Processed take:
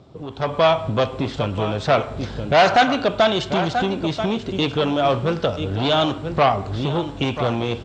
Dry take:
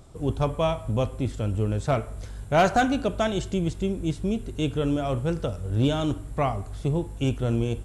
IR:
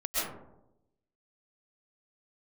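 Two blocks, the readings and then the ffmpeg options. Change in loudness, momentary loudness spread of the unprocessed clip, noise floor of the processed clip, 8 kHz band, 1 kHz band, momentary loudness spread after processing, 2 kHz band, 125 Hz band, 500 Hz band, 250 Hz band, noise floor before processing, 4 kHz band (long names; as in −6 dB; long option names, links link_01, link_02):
+6.0 dB, 6 LU, −35 dBFS, +0.5 dB, +9.0 dB, 7 LU, +9.0 dB, +0.5 dB, +7.5 dB, +3.0 dB, −39 dBFS, +12.5 dB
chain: -filter_complex "[0:a]aecho=1:1:986:0.211,aeval=exprs='0.299*(cos(1*acos(clip(val(0)/0.299,-1,1)))-cos(1*PI/2))+0.0668*(cos(5*acos(clip(val(0)/0.299,-1,1)))-cos(5*PI/2))':channel_layout=same,highpass=130,acrossover=split=680[link_01][link_02];[link_01]acompressor=threshold=-35dB:ratio=6[link_03];[link_02]lowpass=frequency=4500:width=0.5412,lowpass=frequency=4500:width=1.3066[link_04];[link_03][link_04]amix=inputs=2:normalize=0,equalizer=frequency=1800:width_type=o:width=2:gain=-6,dynaudnorm=framelen=300:gausssize=3:maxgain=12.5dB"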